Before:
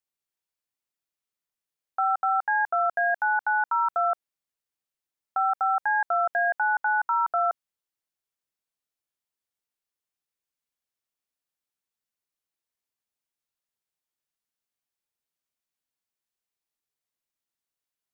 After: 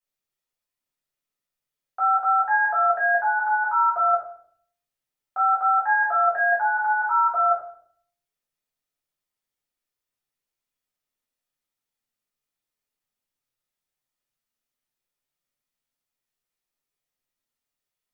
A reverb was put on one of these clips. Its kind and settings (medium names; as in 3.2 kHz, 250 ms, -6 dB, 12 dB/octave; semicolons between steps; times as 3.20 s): simulated room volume 75 m³, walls mixed, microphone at 2 m; trim -6 dB